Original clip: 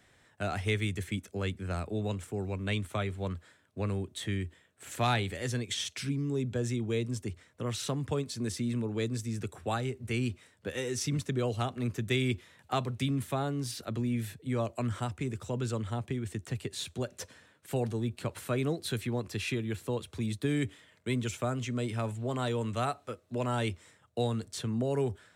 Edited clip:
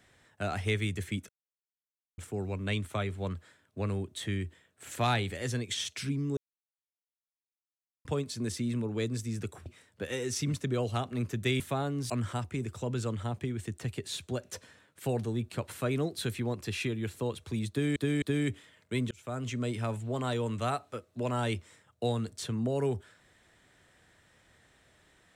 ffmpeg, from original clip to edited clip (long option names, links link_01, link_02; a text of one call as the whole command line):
ffmpeg -i in.wav -filter_complex "[0:a]asplit=11[link_01][link_02][link_03][link_04][link_05][link_06][link_07][link_08][link_09][link_10][link_11];[link_01]atrim=end=1.29,asetpts=PTS-STARTPTS,afade=type=out:start_time=1.286:duration=0.004:curve=hsin[link_12];[link_02]atrim=start=1.29:end=2.18,asetpts=PTS-STARTPTS,volume=0[link_13];[link_03]atrim=start=2.18:end=6.37,asetpts=PTS-STARTPTS,afade=type=in:duration=0.004:curve=hsin,afade=type=out:start_time=4.186:duration=0.004:curve=hsin[link_14];[link_04]atrim=start=6.37:end=8.05,asetpts=PTS-STARTPTS,volume=0[link_15];[link_05]atrim=start=8.05:end=9.662,asetpts=PTS-STARTPTS,afade=type=in:duration=0.004:curve=hsin[link_16];[link_06]atrim=start=10.308:end=12.252[link_17];[link_07]atrim=start=13.208:end=13.712[link_18];[link_08]atrim=start=14.768:end=20.632[link_19];[link_09]atrim=start=20.368:end=20.632[link_20];[link_10]atrim=start=20.368:end=21.26,asetpts=PTS-STARTPTS,afade=type=out:start_time=0.888:duration=0.004:curve=hsin[link_21];[link_11]atrim=start=21.26,asetpts=PTS-STARTPTS,afade=type=in:duration=0.38[link_22];[link_12][link_13][link_14][link_15][link_16]concat=n=5:v=0:a=1[link_23];[link_23][link_17]acrossfade=duration=0.004:curve1=hsin:curve2=hsin[link_24];[link_24][link_18]acrossfade=duration=0.004:curve1=hsin:curve2=hsin[link_25];[link_25][link_19]acrossfade=duration=0.004:curve1=hsin:curve2=hsin[link_26];[link_26][link_20]acrossfade=duration=0.004:curve1=hsin:curve2=hsin[link_27];[link_21][link_22]concat=n=2:v=0:a=1[link_28];[link_27][link_28]acrossfade=duration=0.004:curve1=hsin:curve2=hsin" out.wav